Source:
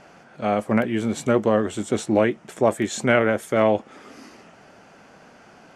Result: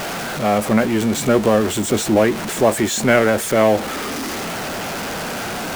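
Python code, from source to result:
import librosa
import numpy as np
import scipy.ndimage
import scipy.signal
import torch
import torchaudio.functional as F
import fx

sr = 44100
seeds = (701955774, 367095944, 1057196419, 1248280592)

y = x + 0.5 * 10.0 ** (-23.0 / 20.0) * np.sign(x)
y = F.gain(torch.from_numpy(y), 2.5).numpy()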